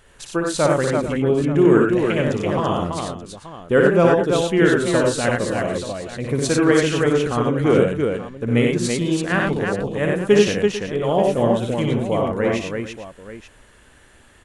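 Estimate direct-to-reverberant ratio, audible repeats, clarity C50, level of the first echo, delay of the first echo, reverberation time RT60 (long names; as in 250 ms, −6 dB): no reverb audible, 5, no reverb audible, −4.0 dB, 59 ms, no reverb audible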